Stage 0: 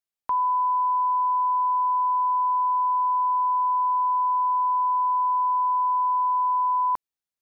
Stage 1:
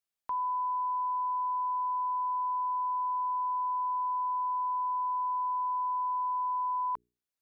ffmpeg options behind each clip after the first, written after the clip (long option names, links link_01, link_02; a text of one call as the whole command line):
ffmpeg -i in.wav -af "bandreject=frequency=60:width_type=h:width=6,bandreject=frequency=120:width_type=h:width=6,bandreject=frequency=180:width_type=h:width=6,bandreject=frequency=240:width_type=h:width=6,bandreject=frequency=300:width_type=h:width=6,bandreject=frequency=360:width_type=h:width=6,bandreject=frequency=420:width_type=h:width=6,alimiter=level_in=4dB:limit=-24dB:level=0:latency=1:release=461,volume=-4dB" out.wav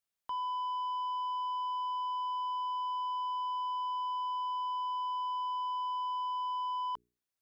ffmpeg -i in.wav -af "asoftclip=type=tanh:threshold=-32.5dB" out.wav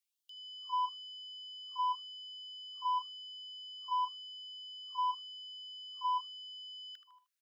ffmpeg -i in.wav -af "aecho=1:1:77|154|231|308:0.211|0.0803|0.0305|0.0116,afftfilt=real='re*gte(b*sr/1024,950*pow(2900/950,0.5+0.5*sin(2*PI*0.94*pts/sr)))':imag='im*gte(b*sr/1024,950*pow(2900/950,0.5+0.5*sin(2*PI*0.94*pts/sr)))':win_size=1024:overlap=0.75,volume=1.5dB" out.wav